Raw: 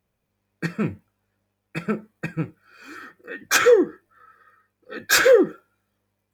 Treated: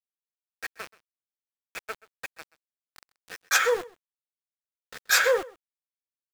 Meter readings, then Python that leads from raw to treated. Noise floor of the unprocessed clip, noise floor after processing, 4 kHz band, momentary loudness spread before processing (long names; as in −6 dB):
−77 dBFS, below −85 dBFS, −3.0 dB, 22 LU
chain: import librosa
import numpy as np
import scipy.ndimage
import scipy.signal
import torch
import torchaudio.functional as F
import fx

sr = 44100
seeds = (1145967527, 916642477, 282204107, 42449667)

y = fx.diode_clip(x, sr, knee_db=-4.0)
y = scipy.signal.sosfilt(scipy.signal.butter(4, 570.0, 'highpass', fs=sr, output='sos'), y)
y = np.where(np.abs(y) >= 10.0 ** (-31.5 / 20.0), y, 0.0)
y = y + 10.0 ** (-21.5 / 20.0) * np.pad(y, (int(130 * sr / 1000.0), 0))[:len(y)]
y = F.gain(torch.from_numpy(y), -2.5).numpy()